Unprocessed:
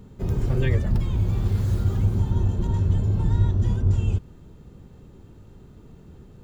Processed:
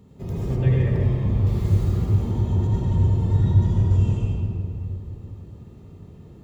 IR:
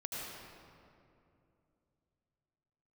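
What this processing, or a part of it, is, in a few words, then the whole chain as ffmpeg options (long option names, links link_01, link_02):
stairwell: -filter_complex "[1:a]atrim=start_sample=2205[link_01];[0:a][link_01]afir=irnorm=-1:irlink=0,highpass=59,bandreject=frequency=1500:width=5.8,asettb=1/sr,asplit=3[link_02][link_03][link_04];[link_02]atrim=end=0.564[link_05];[link_03]atrim=start=0.56:end=1.47,asetpts=PTS-STARTPTS,afade=type=in:duration=0.004:curve=qsin,afade=type=out:start_time=0.906:duration=0.004:curve=qsin,highshelf=frequency=3400:gain=-9.5[link_06];[link_04]atrim=start=1.466[link_07];[link_05][link_06]acrossfade=duration=0.004:curve1=hsin:curve2=qsin[link_08];[link_08][link_07]acrossfade=duration=0.004:curve1=qsin:curve2=hsin"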